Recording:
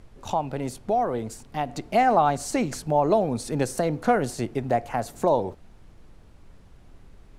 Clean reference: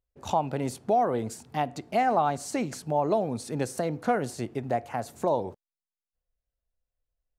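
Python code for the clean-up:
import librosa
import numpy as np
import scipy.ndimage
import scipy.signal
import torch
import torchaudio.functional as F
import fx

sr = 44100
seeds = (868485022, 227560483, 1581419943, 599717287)

y = fx.noise_reduce(x, sr, print_start_s=6.19, print_end_s=6.69, reduce_db=30.0)
y = fx.fix_level(y, sr, at_s=1.69, step_db=-4.5)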